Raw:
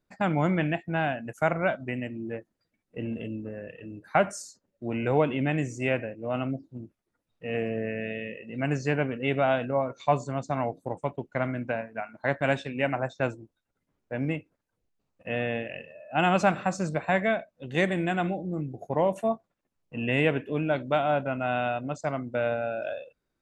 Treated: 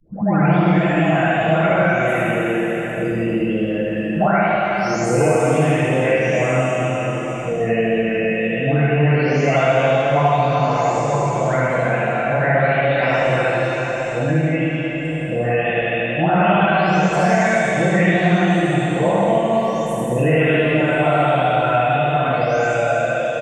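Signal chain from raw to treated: delay that grows with frequency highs late, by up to 735 ms; delay 76 ms -3.5 dB; reverberation RT60 3.2 s, pre-delay 33 ms, DRR -6 dB; three bands compressed up and down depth 70%; trim +4.5 dB

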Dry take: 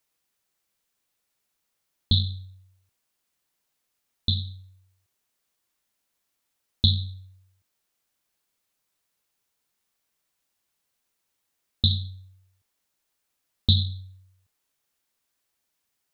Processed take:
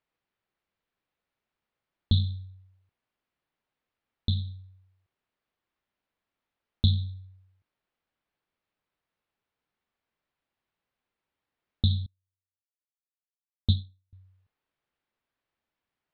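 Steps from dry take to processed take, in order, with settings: distance through air 350 m; 12.06–14.13 s: upward expansion 2.5:1, over -42 dBFS

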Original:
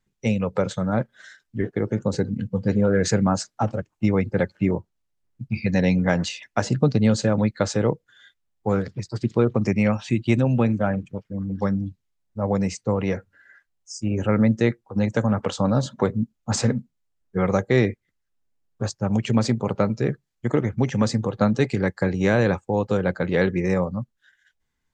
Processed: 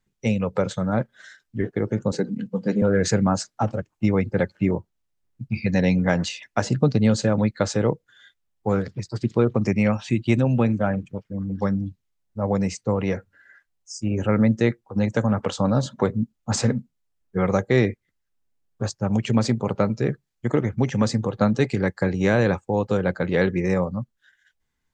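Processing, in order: 2.12–2.82 s: steep high-pass 160 Hz 36 dB/octave

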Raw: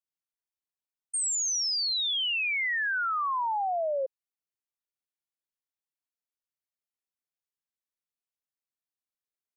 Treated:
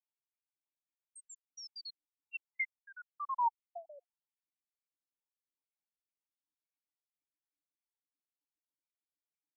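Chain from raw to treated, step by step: random holes in the spectrogram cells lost 78%; vowel filter u; trim +10.5 dB

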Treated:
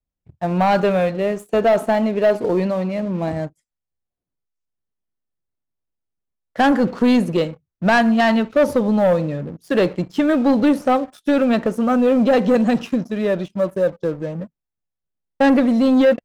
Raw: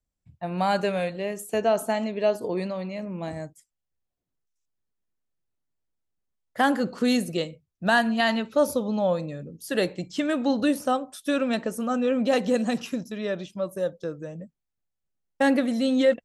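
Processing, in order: low-pass 1.6 kHz 6 dB/octave; waveshaping leveller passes 2; trim +3 dB

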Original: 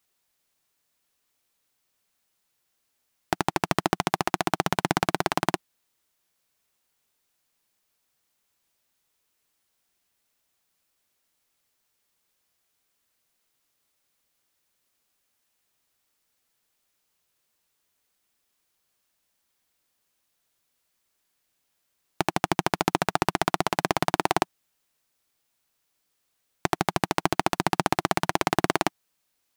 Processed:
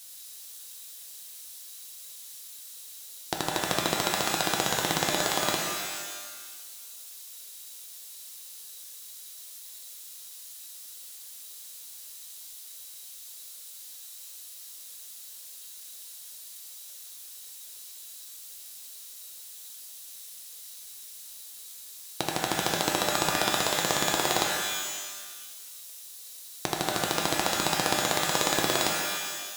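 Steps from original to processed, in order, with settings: added noise blue -45 dBFS; high-order bell 6.3 kHz +8 dB 2.3 oct; small resonant body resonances 500/3900 Hz, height 10 dB; pitch-shifted reverb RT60 1.4 s, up +12 st, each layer -2 dB, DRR 1 dB; trim -7.5 dB

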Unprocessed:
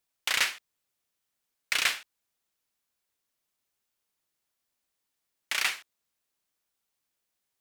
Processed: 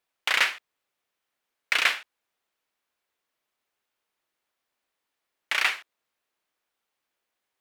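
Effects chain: tone controls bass -10 dB, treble -11 dB; trim +6 dB

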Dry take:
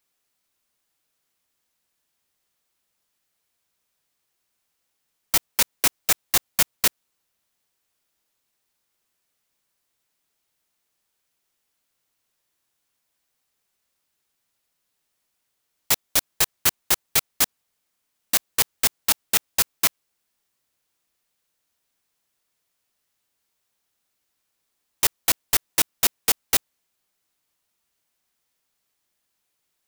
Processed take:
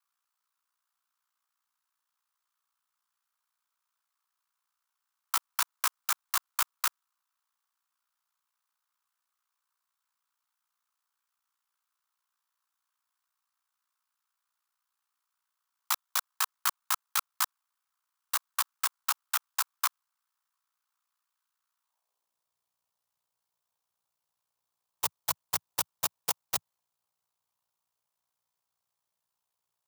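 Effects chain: high-pass sweep 1.3 kHz -> 130 Hz, 21.82–22.45 s; ring modulator 30 Hz; ten-band graphic EQ 250 Hz -11 dB, 1 kHz +10 dB, 2 kHz -6 dB; trim -7 dB

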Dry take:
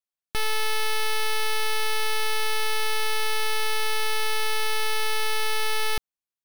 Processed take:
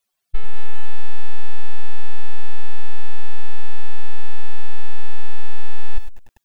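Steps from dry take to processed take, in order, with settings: spectral contrast enhancement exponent 2.6; bit-crushed delay 100 ms, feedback 35%, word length 9-bit, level -12 dB; trim +16.5 dB

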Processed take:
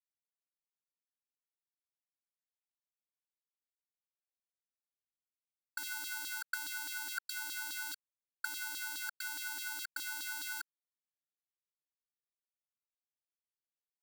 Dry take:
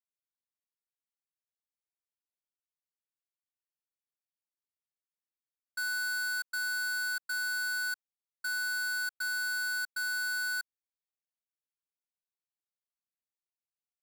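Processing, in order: comb 3.7 ms, depth 86%; in parallel at -2 dB: peak limiter -37.5 dBFS, peak gain reduction 10 dB; on the sum: bit crusher 11-bit; LFO high-pass saw down 4.8 Hz 360–4000 Hz

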